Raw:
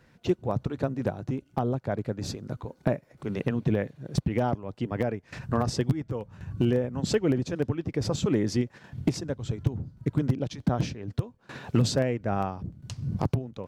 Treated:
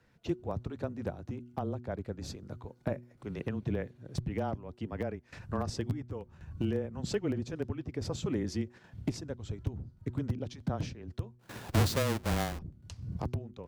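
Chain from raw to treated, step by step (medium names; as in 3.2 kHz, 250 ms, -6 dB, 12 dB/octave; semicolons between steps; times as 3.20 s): 11.39–12.59 s: square wave that keeps the level; frequency shift -18 Hz; de-hum 121.4 Hz, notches 3; trim -7.5 dB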